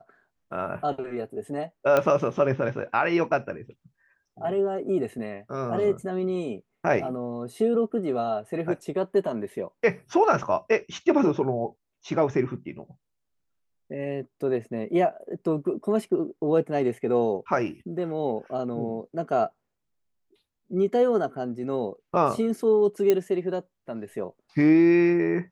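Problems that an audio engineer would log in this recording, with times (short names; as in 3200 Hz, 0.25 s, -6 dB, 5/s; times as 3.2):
1.97 pop -10 dBFS
23.1 pop -9 dBFS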